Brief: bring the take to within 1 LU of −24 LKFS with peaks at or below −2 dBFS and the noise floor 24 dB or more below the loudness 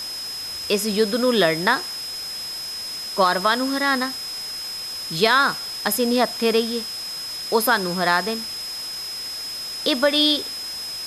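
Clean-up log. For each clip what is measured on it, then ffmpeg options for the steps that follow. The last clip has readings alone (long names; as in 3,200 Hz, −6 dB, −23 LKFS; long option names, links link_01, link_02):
interfering tone 5,100 Hz; level of the tone −29 dBFS; background noise floor −31 dBFS; target noise floor −46 dBFS; integrated loudness −22.0 LKFS; sample peak −6.0 dBFS; target loudness −24.0 LKFS
→ -af "bandreject=frequency=5100:width=30"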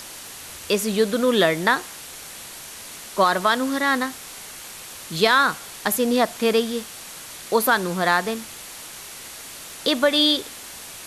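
interfering tone none found; background noise floor −39 dBFS; target noise floor −45 dBFS
→ -af "afftdn=noise_reduction=6:noise_floor=-39"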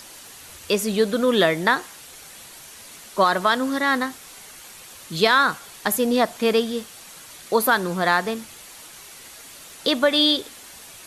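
background noise floor −43 dBFS; target noise floor −45 dBFS
→ -af "afftdn=noise_reduction=6:noise_floor=-43"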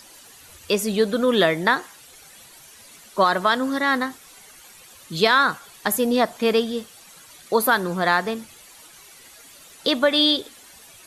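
background noise floor −48 dBFS; integrated loudness −21.0 LKFS; sample peak −6.5 dBFS; target loudness −24.0 LKFS
→ -af "volume=-3dB"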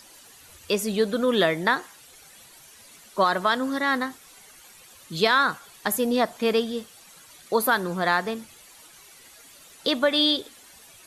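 integrated loudness −24.0 LKFS; sample peak −9.5 dBFS; background noise floor −51 dBFS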